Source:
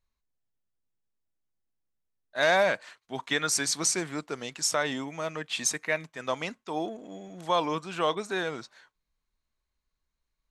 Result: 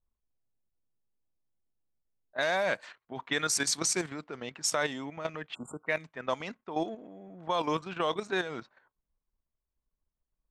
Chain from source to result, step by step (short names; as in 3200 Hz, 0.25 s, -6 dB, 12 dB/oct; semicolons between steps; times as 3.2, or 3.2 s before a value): spectral delete 5.54–5.87, 1500–7000 Hz; low-pass opened by the level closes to 850 Hz, open at -24 dBFS; level quantiser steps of 10 dB; gain +2 dB